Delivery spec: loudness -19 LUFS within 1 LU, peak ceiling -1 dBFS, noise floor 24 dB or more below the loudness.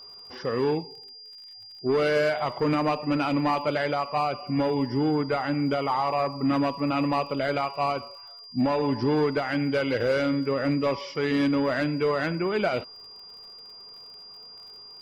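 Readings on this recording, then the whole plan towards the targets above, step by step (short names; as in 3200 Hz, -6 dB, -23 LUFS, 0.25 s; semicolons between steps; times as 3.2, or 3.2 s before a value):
ticks 48/s; steady tone 4800 Hz; tone level -43 dBFS; loudness -26.0 LUFS; peak -14.5 dBFS; loudness target -19.0 LUFS
-> de-click; notch 4800 Hz, Q 30; gain +7 dB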